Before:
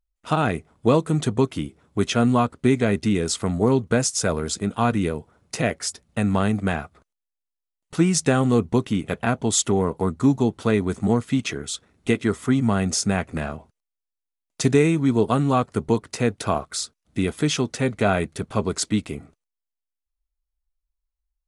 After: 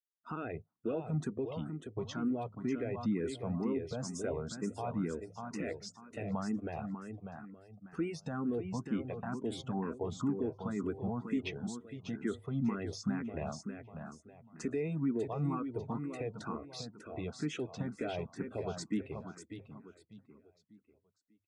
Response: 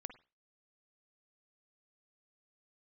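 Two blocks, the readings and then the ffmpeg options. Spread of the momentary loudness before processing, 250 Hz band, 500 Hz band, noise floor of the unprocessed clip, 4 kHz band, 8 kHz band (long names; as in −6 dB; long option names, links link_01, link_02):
10 LU, −14.0 dB, −15.0 dB, −85 dBFS, −19.0 dB, −23.5 dB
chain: -filter_complex "[0:a]lowshelf=frequency=60:gain=-11.5,bandreject=frequency=50:width_type=h:width=6,bandreject=frequency=100:width_type=h:width=6,alimiter=limit=-16dB:level=0:latency=1:release=85,afftdn=noise_reduction=21:noise_floor=-38,aemphasis=mode=reproduction:type=75kf,asplit=2[link_01][link_02];[link_02]aecho=0:1:595|1190|1785|2380:0.447|0.143|0.0457|0.0146[link_03];[link_01][link_03]amix=inputs=2:normalize=0,asplit=2[link_04][link_05];[link_05]afreqshift=2.1[link_06];[link_04][link_06]amix=inputs=2:normalize=1,volume=-7dB"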